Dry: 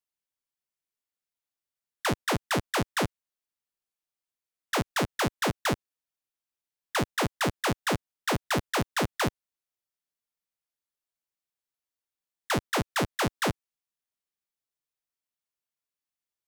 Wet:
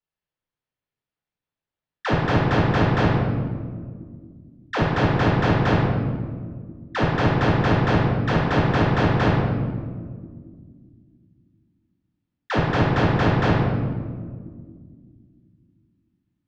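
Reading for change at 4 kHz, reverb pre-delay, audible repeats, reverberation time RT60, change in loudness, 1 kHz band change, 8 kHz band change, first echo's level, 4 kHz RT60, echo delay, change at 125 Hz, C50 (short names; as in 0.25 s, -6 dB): +0.5 dB, 4 ms, none, 1.9 s, +8.0 dB, +7.5 dB, under -10 dB, none, 0.95 s, none, +15.5 dB, -0.5 dB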